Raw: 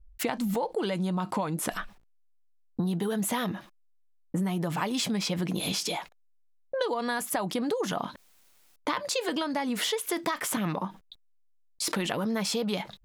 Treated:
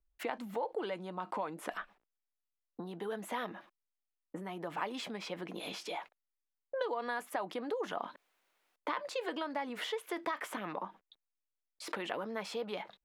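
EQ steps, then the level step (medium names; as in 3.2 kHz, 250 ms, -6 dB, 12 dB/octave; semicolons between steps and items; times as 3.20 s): three-band isolator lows -20 dB, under 290 Hz, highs -14 dB, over 3.1 kHz; -5.5 dB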